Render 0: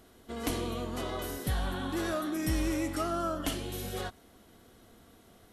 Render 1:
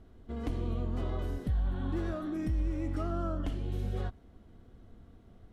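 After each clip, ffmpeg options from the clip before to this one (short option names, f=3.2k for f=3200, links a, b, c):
-af "aemphasis=mode=reproduction:type=riaa,alimiter=limit=-17dB:level=0:latency=1:release=269,volume=-6.5dB"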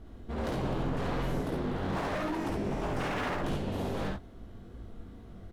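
-filter_complex "[0:a]flanger=delay=17.5:depth=4:speed=2.5,aeval=exprs='0.0119*(abs(mod(val(0)/0.0119+3,4)-2)-1)':c=same,asplit=2[a][b];[b]aecho=0:1:53|68:0.596|0.596[c];[a][c]amix=inputs=2:normalize=0,volume=9dB"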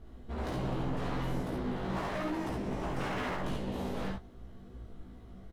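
-filter_complex "[0:a]asplit=2[a][b];[b]adelay=16,volume=-4dB[c];[a][c]amix=inputs=2:normalize=0,volume=-4dB"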